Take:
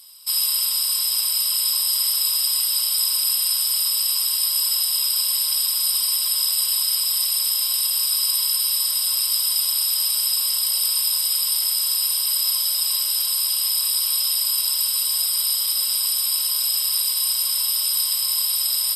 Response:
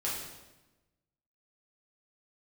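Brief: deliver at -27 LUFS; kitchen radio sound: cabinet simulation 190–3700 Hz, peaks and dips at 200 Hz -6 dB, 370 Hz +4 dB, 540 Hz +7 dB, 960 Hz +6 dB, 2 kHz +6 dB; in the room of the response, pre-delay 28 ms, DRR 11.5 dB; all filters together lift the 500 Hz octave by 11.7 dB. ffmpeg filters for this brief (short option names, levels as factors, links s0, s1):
-filter_complex "[0:a]equalizer=f=500:t=o:g=8.5,asplit=2[s0][s1];[1:a]atrim=start_sample=2205,adelay=28[s2];[s1][s2]afir=irnorm=-1:irlink=0,volume=0.15[s3];[s0][s3]amix=inputs=2:normalize=0,highpass=190,equalizer=f=200:t=q:w=4:g=-6,equalizer=f=370:t=q:w=4:g=4,equalizer=f=540:t=q:w=4:g=7,equalizer=f=960:t=q:w=4:g=6,equalizer=f=2000:t=q:w=4:g=6,lowpass=f=3700:w=0.5412,lowpass=f=3700:w=1.3066,volume=1.58"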